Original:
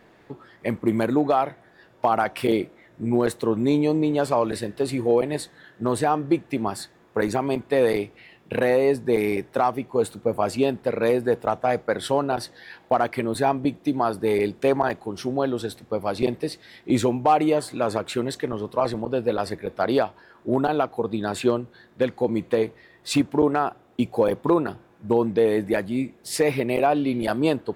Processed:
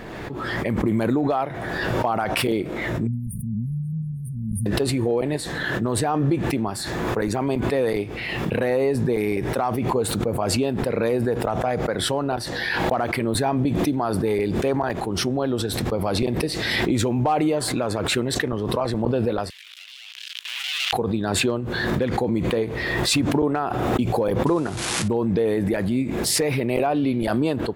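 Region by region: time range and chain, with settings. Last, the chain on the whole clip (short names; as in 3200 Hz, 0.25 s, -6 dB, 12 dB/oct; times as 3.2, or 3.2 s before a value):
3.07–4.66 brick-wall FIR band-stop 230–8800 Hz + high shelf 8200 Hz -9.5 dB
19.5–20.93 sample leveller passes 5 + compressor 12:1, threshold -23 dBFS + ladder high-pass 2600 Hz, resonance 55%
24.46–25.08 switching spikes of -25.5 dBFS + steep low-pass 11000 Hz 96 dB/oct + high shelf 5200 Hz -7 dB
whole clip: low shelf 120 Hz +9 dB; limiter -13 dBFS; backwards sustainer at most 22 dB/s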